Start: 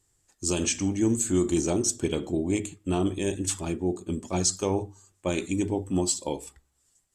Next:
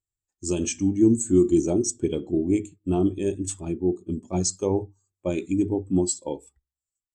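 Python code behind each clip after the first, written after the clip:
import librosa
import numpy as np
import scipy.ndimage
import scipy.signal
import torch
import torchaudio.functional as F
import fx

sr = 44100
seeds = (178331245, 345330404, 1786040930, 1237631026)

y = fx.spectral_expand(x, sr, expansion=1.5)
y = F.gain(torch.from_numpy(y), 2.0).numpy()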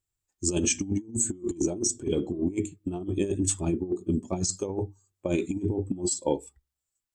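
y = fx.over_compress(x, sr, threshold_db=-27.0, ratio=-0.5)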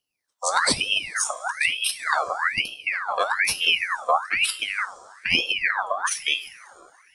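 y = fx.graphic_eq_15(x, sr, hz=(160, 1000, 2500), db=(10, -11, 12))
y = fx.rev_double_slope(y, sr, seeds[0], early_s=0.36, late_s=2.8, knee_db=-15, drr_db=8.5)
y = fx.ring_lfo(y, sr, carrier_hz=1900.0, swing_pct=55, hz=1.1)
y = F.gain(torch.from_numpy(y), 3.5).numpy()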